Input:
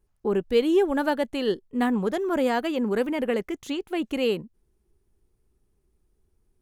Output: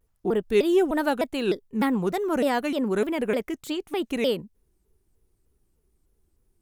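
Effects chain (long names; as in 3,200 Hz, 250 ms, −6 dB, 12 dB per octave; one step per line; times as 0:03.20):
high-shelf EQ 8,500 Hz +7.5 dB
pitch modulation by a square or saw wave saw down 3.3 Hz, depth 250 cents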